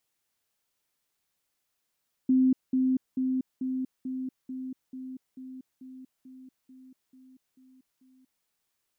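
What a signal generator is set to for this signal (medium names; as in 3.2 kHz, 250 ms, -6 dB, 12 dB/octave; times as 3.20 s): level ladder 259 Hz -18.5 dBFS, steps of -3 dB, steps 14, 0.24 s 0.20 s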